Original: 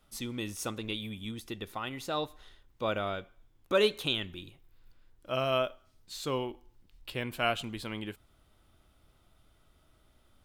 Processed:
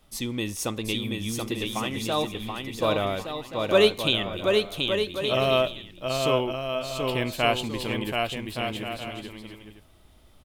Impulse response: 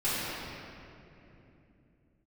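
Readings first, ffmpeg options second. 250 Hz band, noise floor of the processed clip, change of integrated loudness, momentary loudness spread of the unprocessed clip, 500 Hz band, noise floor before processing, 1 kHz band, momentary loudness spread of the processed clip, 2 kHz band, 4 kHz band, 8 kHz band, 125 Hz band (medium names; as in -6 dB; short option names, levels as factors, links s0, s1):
+9.0 dB, -55 dBFS, +7.5 dB, 13 LU, +9.0 dB, -67 dBFS, +7.5 dB, 11 LU, +8.0 dB, +9.0 dB, +9.0 dB, +9.0 dB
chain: -filter_complex "[0:a]equalizer=f=1400:t=o:w=0.25:g=-8.5,asplit=2[s0][s1];[s1]aecho=0:1:730|1168|1431|1588|1683:0.631|0.398|0.251|0.158|0.1[s2];[s0][s2]amix=inputs=2:normalize=0,volume=2.24"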